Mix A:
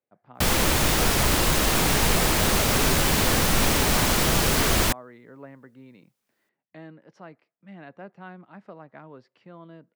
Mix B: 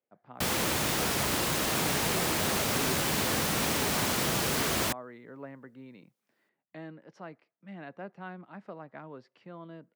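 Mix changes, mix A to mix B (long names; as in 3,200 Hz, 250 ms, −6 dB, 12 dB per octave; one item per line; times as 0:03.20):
background −6.5 dB
master: add high-pass filter 110 Hz 12 dB per octave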